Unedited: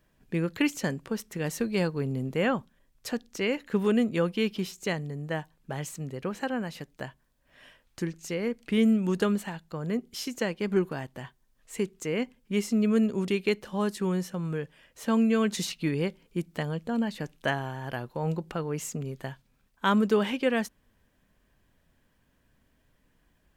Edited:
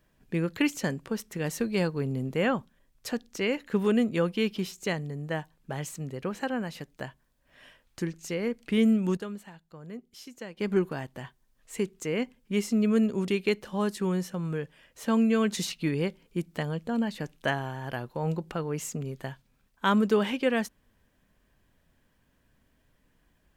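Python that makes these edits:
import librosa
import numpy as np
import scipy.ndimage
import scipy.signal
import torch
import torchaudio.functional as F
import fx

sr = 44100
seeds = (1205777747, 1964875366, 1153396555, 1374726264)

y = fx.edit(x, sr, fx.clip_gain(start_s=9.17, length_s=1.4, db=-11.5), tone=tone)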